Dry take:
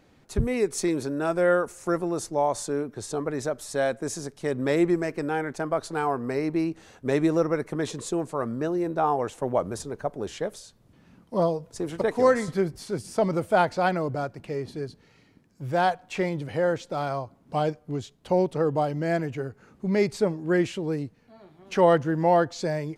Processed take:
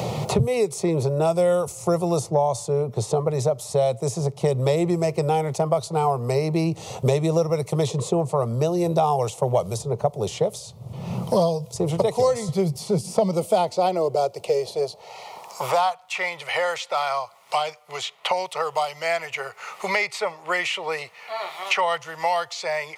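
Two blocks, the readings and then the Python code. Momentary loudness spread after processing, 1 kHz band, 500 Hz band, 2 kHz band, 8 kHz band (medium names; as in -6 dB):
9 LU, +3.5 dB, +3.0 dB, +4.0 dB, +4.5 dB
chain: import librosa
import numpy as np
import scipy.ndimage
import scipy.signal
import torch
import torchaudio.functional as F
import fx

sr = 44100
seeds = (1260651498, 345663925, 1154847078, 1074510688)

y = fx.fixed_phaser(x, sr, hz=670.0, stages=4)
y = fx.filter_sweep_highpass(y, sr, from_hz=120.0, to_hz=1700.0, start_s=12.56, end_s=16.31, q=2.5)
y = fx.band_squash(y, sr, depth_pct=100)
y = F.gain(torch.from_numpy(y), 7.0).numpy()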